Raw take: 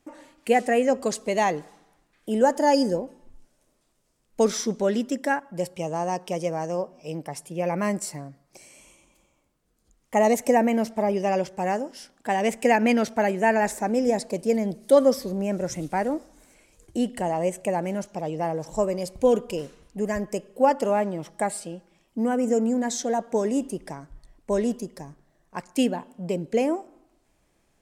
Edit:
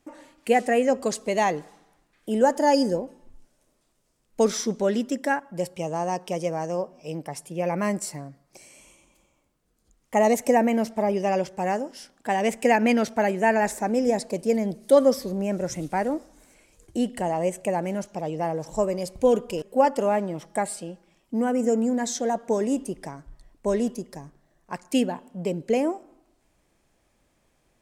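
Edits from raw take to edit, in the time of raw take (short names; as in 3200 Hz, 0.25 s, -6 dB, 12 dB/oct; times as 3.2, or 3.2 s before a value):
19.62–20.46 cut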